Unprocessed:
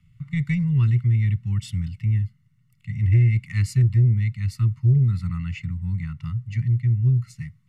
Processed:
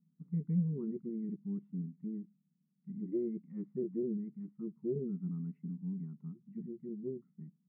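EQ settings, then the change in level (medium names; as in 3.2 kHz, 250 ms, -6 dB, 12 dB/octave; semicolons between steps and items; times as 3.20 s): brick-wall FIR high-pass 170 Hz; four-pole ladder low-pass 480 Hz, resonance 55%; +7.0 dB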